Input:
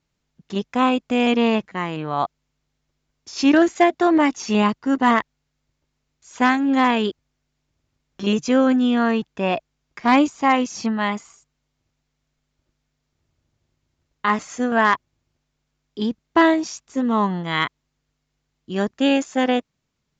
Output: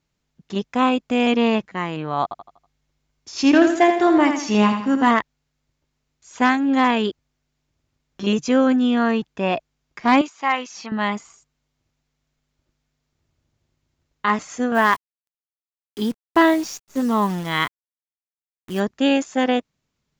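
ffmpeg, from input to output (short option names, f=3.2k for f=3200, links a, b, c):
-filter_complex "[0:a]asettb=1/sr,asplit=3[a][b][c];[a]atrim=end=2.234[d];[b]atrim=start=2.23:end=5.08,asetpts=PTS-STARTPTS,afade=t=in:d=0.004:c=qsin,afade=t=out:st=2.846:d=0.004:c=qsin,aecho=1:1:81|162|243|324|405:0.447|0.179|0.0715|0.0286|0.0114,atrim=end_sample=125685[e];[c]atrim=start=5.076[f];[d][e]acrossfade=d=0.004:c1=hsin:c2=qsin[g];[g][f]acrossfade=d=0.004:c1=qsin:c2=hsin,asettb=1/sr,asplit=3[h][i][j];[h]atrim=end=10.214[k];[i]atrim=start=10.21:end=10.92,asetpts=PTS-STARTPTS,afade=t=in:d=0.004:c=qsin,afade=t=out:st=0.706:d=0.004:c=qsin,bandpass=f=2.1k:t=q:w=0.55[l];[j]atrim=start=10.916[m];[k][l]acrossfade=d=0.004:c1=hsin:c2=qsin[n];[n][m]acrossfade=d=0.004:c1=qsin:c2=hsin,asplit=3[o][p][q];[o]afade=t=out:st=14.74:d=0.02[r];[p]acrusher=bits=7:dc=4:mix=0:aa=0.000001,afade=t=in:st=14.74:d=0.02,afade=t=out:st=18.79:d=0.02[s];[q]afade=t=in:st=18.79:d=0.02[t];[r][s][t]amix=inputs=3:normalize=0"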